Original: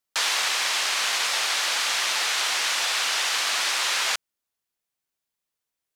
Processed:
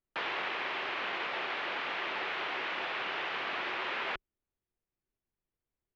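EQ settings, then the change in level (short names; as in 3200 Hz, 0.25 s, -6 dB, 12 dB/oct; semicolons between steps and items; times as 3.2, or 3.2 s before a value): ladder low-pass 3500 Hz, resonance 30%; tilt -4.5 dB/oct; bell 370 Hz +7 dB 0.34 oct; 0.0 dB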